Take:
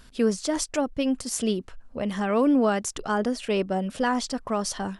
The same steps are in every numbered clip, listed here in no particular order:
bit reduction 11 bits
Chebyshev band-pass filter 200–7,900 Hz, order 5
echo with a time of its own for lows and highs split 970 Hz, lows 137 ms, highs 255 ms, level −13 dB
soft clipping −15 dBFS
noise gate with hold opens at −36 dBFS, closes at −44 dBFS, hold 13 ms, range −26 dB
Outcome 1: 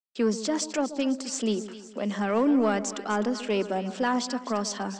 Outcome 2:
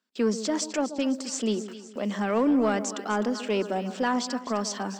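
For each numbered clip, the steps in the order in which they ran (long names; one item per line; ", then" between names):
noise gate with hold, then bit reduction, then Chebyshev band-pass filter, then soft clipping, then echo with a time of its own for lows and highs
Chebyshev band-pass filter, then bit reduction, then noise gate with hold, then echo with a time of its own for lows and highs, then soft clipping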